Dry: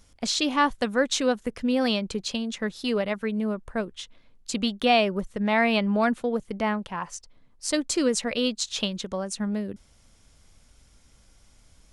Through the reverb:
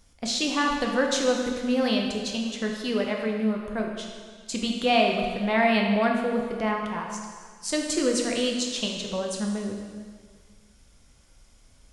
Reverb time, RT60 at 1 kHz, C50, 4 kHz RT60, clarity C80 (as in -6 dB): 1.8 s, 1.8 s, 3.0 dB, 1.7 s, 4.5 dB